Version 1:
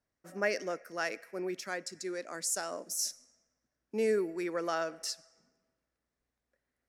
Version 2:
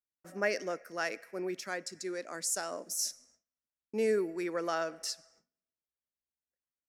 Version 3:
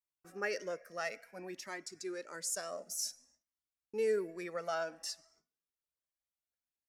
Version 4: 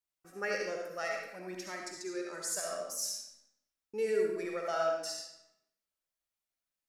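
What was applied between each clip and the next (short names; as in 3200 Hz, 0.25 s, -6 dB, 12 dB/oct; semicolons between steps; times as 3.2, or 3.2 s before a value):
gate with hold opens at -55 dBFS
cascading flanger rising 0.57 Hz
digital reverb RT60 0.76 s, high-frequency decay 0.9×, pre-delay 25 ms, DRR 0 dB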